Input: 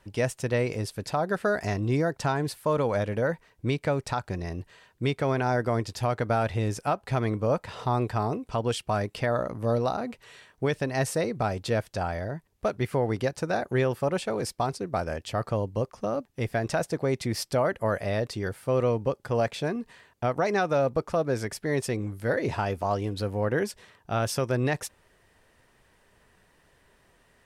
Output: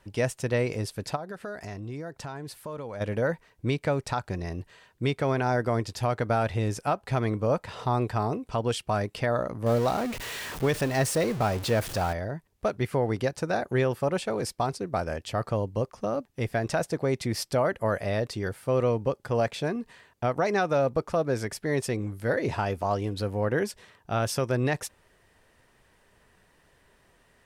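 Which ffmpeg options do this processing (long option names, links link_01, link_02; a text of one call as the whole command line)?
ffmpeg -i in.wav -filter_complex "[0:a]asplit=3[link_01][link_02][link_03];[link_01]afade=type=out:start_time=1.15:duration=0.02[link_04];[link_02]acompressor=threshold=-39dB:ratio=2.5:attack=3.2:release=140:knee=1:detection=peak,afade=type=in:start_time=1.15:duration=0.02,afade=type=out:start_time=3:duration=0.02[link_05];[link_03]afade=type=in:start_time=3:duration=0.02[link_06];[link_04][link_05][link_06]amix=inputs=3:normalize=0,asettb=1/sr,asplit=3[link_07][link_08][link_09];[link_07]atrim=end=9.664[link_10];[link_08]atrim=start=9.66:end=12.13,asetpts=PTS-STARTPTS,afade=type=in:duration=0.004:curve=qsin,afade=type=out:start_time=2.466:duration=0.004:curve=qsin,aeval=exprs='val(0)+0.5*0.0266*sgn(val(0))':channel_layout=same[link_11];[link_09]atrim=start=12.126[link_12];[link_10][link_11]acrossfade=duration=0.004:curve1=hsin:curve2=qsin[link_13];[link_13][link_12]acrossfade=duration=0.004:curve1=qsin:curve2=hsin" out.wav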